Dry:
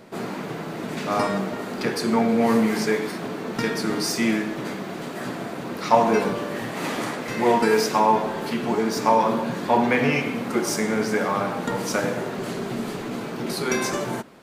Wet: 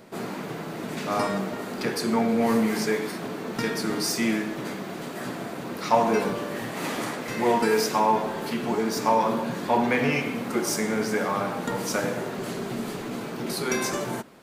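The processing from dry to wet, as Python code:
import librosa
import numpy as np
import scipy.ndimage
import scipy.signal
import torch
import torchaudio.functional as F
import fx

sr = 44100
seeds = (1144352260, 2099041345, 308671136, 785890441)

p1 = 10.0 ** (-14.0 / 20.0) * np.tanh(x / 10.0 ** (-14.0 / 20.0))
p2 = x + (p1 * librosa.db_to_amplitude(-7.5))
p3 = fx.high_shelf(p2, sr, hz=8400.0, db=5.5)
y = p3 * librosa.db_to_amplitude(-5.5)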